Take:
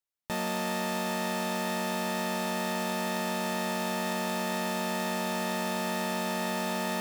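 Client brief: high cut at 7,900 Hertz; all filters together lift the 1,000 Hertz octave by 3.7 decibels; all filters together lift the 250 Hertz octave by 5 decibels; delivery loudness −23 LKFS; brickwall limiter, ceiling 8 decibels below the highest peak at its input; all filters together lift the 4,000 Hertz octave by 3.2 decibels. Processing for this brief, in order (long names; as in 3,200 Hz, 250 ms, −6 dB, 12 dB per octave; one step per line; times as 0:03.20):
low-pass filter 7,900 Hz
parametric band 250 Hz +6 dB
parametric band 1,000 Hz +4 dB
parametric band 4,000 Hz +4 dB
level +9.5 dB
brickwall limiter −14.5 dBFS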